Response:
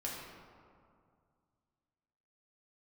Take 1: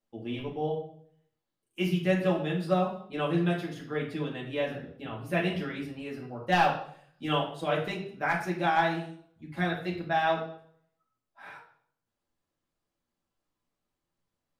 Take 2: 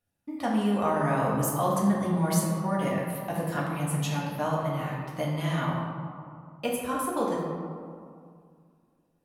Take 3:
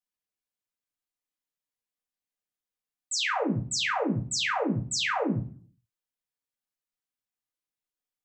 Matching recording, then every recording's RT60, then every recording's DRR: 2; 0.60, 2.2, 0.40 s; -4.5, -5.0, -2.0 dB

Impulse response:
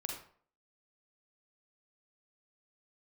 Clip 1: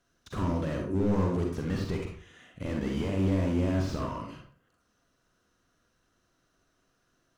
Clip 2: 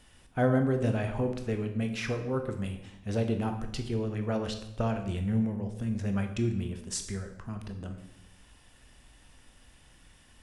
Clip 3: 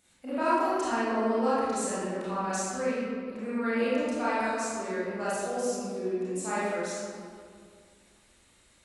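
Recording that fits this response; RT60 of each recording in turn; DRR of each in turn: 1; 0.50, 0.85, 2.2 s; 0.5, 5.0, -11.5 dB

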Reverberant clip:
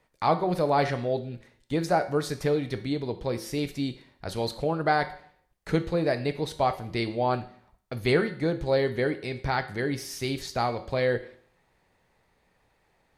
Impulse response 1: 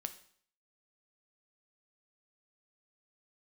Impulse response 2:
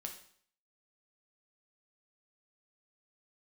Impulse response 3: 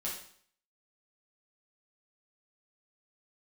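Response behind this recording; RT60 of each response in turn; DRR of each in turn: 1; 0.55, 0.55, 0.55 s; 8.0, 2.0, -6.0 dB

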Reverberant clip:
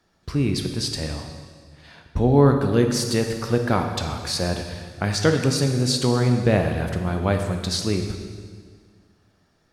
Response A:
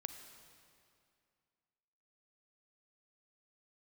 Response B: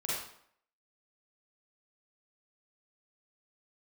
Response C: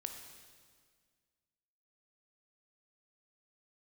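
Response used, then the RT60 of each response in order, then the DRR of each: C; 2.4, 0.65, 1.8 s; 7.5, -7.5, 4.5 dB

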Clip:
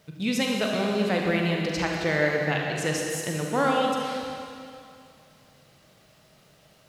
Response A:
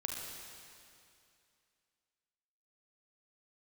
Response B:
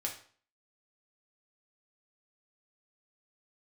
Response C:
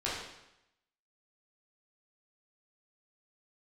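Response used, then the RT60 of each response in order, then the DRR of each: A; 2.5, 0.45, 0.85 s; -0.5, -1.0, -8.0 dB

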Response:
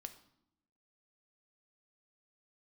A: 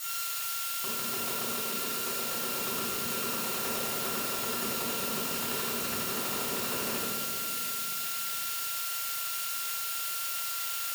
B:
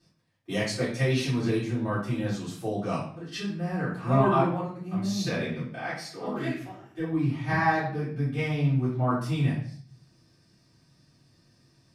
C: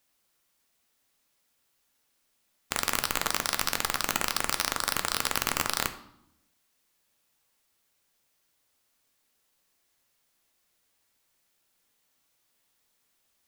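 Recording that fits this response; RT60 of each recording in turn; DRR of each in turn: C; 2.7, 0.55, 0.80 s; -11.5, -13.5, 8.0 dB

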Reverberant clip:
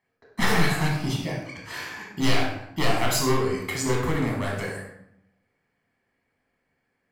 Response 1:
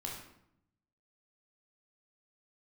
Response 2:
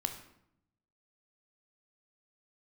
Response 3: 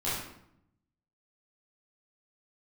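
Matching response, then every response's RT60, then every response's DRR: 1; 0.75, 0.75, 0.75 s; -2.5, 5.5, -11.5 dB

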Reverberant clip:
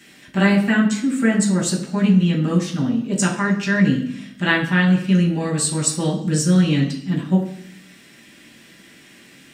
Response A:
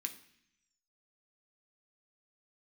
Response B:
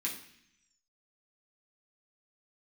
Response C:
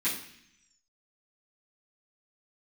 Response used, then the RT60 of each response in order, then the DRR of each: B; 0.65, 0.65, 0.65 s; 4.5, -4.5, -13.0 dB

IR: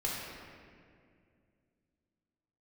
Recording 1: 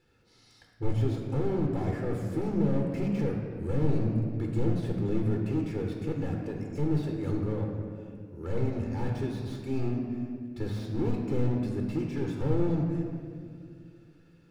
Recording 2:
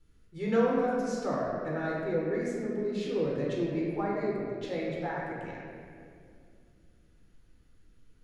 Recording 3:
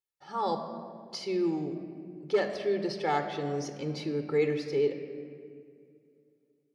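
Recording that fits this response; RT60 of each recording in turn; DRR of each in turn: 2; 2.3, 2.2, 2.3 s; 0.5, -5.0, 6.5 dB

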